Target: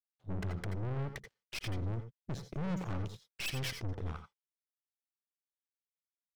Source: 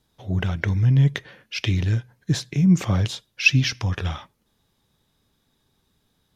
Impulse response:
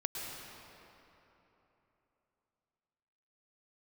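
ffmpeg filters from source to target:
-filter_complex "[0:a]aeval=exprs='sgn(val(0))*max(abs(val(0))-0.00841,0)':c=same,afwtdn=0.0251,aeval=exprs='(tanh(50.1*val(0)+0.8)-tanh(0.8))/50.1':c=same[a];[1:a]atrim=start_sample=2205,afade=t=out:st=0.17:d=0.01,atrim=end_sample=7938,asetrate=57330,aresample=44100[b];[a][b]afir=irnorm=-1:irlink=0,volume=2dB"

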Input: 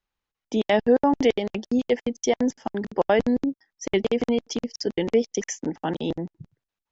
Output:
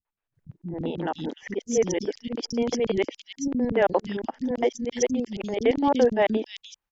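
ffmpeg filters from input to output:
-filter_complex "[0:a]areverse,acrossover=split=280|3200[a][b][c];[b]adelay=50[d];[c]adelay=350[e];[a][d][e]amix=inputs=3:normalize=0"

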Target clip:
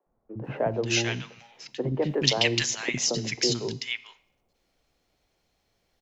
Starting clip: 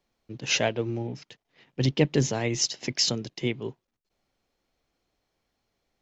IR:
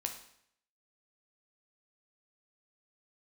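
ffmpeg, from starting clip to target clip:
-filter_complex "[0:a]acrossover=split=290|1200[a][b][c];[a]adelay=60[d];[c]adelay=440[e];[d][b][e]amix=inputs=3:normalize=0,asplit=2[f][g];[1:a]atrim=start_sample=2205[h];[g][h]afir=irnorm=-1:irlink=0,volume=-10dB[i];[f][i]amix=inputs=2:normalize=0,acrossover=split=320|1100[j][k][l];[j]acompressor=threshold=-35dB:ratio=4[m];[k]acompressor=threshold=-29dB:ratio=4[n];[l]acompressor=threshold=-28dB:ratio=4[o];[m][n][o]amix=inputs=3:normalize=0,asettb=1/sr,asplit=3[p][q][r];[p]atrim=end=2.024[s];[q]atrim=start=2.02:end=2.66,asetpts=PTS-STARTPTS,afade=t=in:d=0.004:c=qsin,afade=t=out:st=0.636:d=0.004:c=qsin,highshelf=f=2.2k:g=10[t];[r]atrim=start=2.656[u];[s][t]acrossfade=d=0.004:c1=hsin:c2=qsin[v];[v][u]acrossfade=d=0.004:c1=qsin:c2=hsin,volume=3.5dB"

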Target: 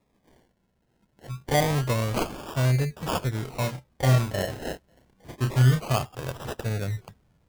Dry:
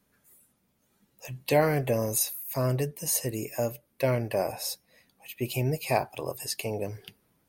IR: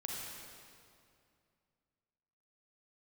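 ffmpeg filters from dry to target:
-filter_complex "[0:a]asubboost=boost=5:cutoff=150,acrusher=samples=29:mix=1:aa=0.000001:lfo=1:lforange=17.4:lforate=0.27,asettb=1/sr,asplit=3[a][b][c];[a]atrim=end=3.444[d];[b]atrim=start=3.44:end=5.84,asetpts=PTS-STARTPTS,afade=t=in:d=0.004:c=qsin,afade=t=out:st=2.396:d=0.004:c=qsin,asplit=2[e][f];[f]adelay=31,volume=-5.5dB[g];[e][g]amix=inputs=2:normalize=0,atrim=end_sample=105840[h];[c]atrim=start=5.836[i];[d][h]acrossfade=d=0.004:c1=hsin:c2=qsin[j];[j][i]acrossfade=d=0.004:c1=qsin:c2=hsin"

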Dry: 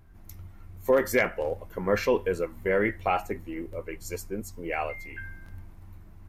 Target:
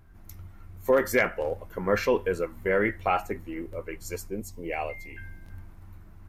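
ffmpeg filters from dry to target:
-af "asetnsamples=n=441:p=0,asendcmd='4.28 equalizer g -9;5.5 equalizer g 4',equalizer=f=1.4k:w=2.5:g=3"

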